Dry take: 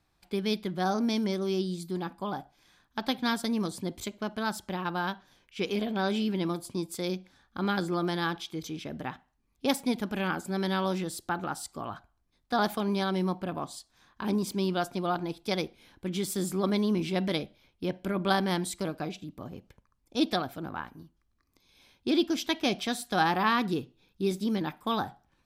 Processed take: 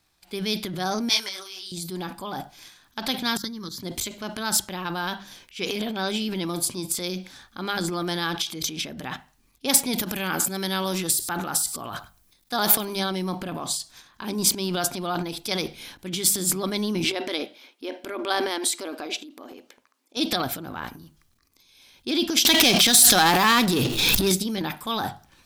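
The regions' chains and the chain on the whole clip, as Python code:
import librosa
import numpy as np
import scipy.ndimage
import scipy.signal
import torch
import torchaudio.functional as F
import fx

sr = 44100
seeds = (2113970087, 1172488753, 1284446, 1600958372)

y = fx.chain(x, sr, fx.highpass(hz=1100.0, slope=12),
    fx.detune_double(cents=38), at=(1.09, 1.72))
y = fx.chain(y, sr, fx.level_steps(step_db=17),
    fx.fixed_phaser(hz=2600.0, stages=6), at=(3.37, 3.83))
y = fx.chain(y, sr, fx.high_shelf(hz=10000.0, db=11.5),
    fx.echo_single(ms=100, db=-20.0), at=(9.93, 13.0))
y = fx.chain(y, sr, fx.brickwall_highpass(low_hz=230.0),
    fx.high_shelf(hz=4900.0, db=-8.0), at=(17.04, 20.17))
y = fx.chain(y, sr, fx.high_shelf(hz=3100.0, db=5.0),
    fx.power_curve(exponent=0.7),
    fx.pre_swell(db_per_s=26.0), at=(22.45, 24.32))
y = fx.transient(y, sr, attack_db=-2, sustain_db=11)
y = fx.high_shelf(y, sr, hz=2300.0, db=11.0)
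y = fx.hum_notches(y, sr, base_hz=50, count=4)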